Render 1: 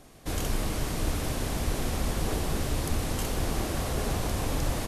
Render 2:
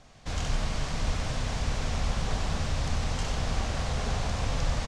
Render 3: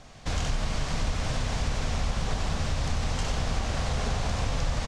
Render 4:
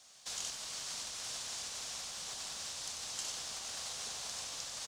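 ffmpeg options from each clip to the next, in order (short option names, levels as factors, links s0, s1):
-filter_complex "[0:a]lowpass=f=6900:w=0.5412,lowpass=f=6900:w=1.3066,equalizer=f=340:w=1.8:g=-12,asplit=2[s0][s1];[s1]aecho=0:1:93:0.501[s2];[s0][s2]amix=inputs=2:normalize=0"
-af "acompressor=threshold=0.0282:ratio=2.5,volume=1.88"
-filter_complex "[0:a]aderivative,acrossover=split=100|1200|2100[s0][s1][s2][s3];[s2]acrusher=samples=13:mix=1:aa=0.000001[s4];[s0][s1][s4][s3]amix=inputs=4:normalize=0,volume=1.26"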